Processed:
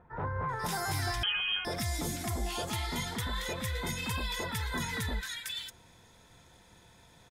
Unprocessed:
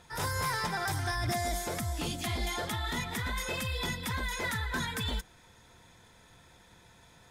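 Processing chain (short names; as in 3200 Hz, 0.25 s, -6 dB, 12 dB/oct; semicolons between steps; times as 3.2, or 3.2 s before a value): bands offset in time lows, highs 0.49 s, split 1600 Hz; 1.23–1.65 inverted band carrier 3200 Hz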